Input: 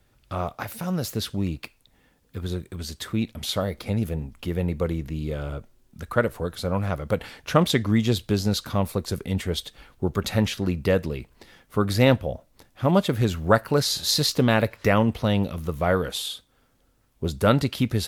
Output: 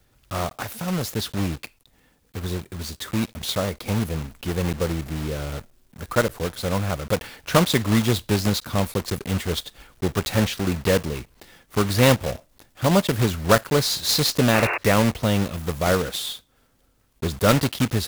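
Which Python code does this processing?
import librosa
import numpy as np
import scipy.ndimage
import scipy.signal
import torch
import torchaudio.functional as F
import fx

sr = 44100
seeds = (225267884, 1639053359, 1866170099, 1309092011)

y = fx.block_float(x, sr, bits=3)
y = fx.spec_paint(y, sr, seeds[0], shape='noise', start_s=14.53, length_s=0.25, low_hz=310.0, high_hz=2800.0, level_db=-26.0)
y = y * librosa.db_to_amplitude(1.0)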